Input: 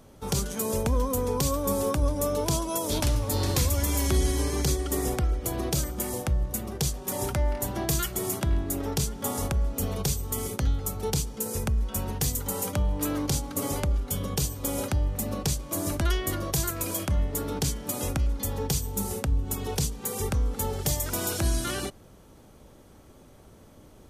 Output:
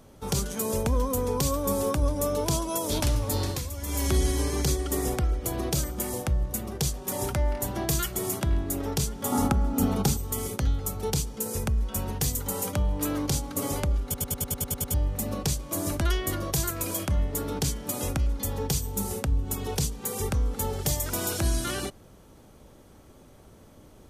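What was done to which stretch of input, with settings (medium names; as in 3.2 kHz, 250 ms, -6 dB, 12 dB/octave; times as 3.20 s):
3.27–4.16 s: dip -10 dB, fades 0.35 s equal-power
9.32–10.17 s: small resonant body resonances 250/830/1300 Hz, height 12 dB, ringing for 25 ms
14.04 s: stutter in place 0.10 s, 9 plays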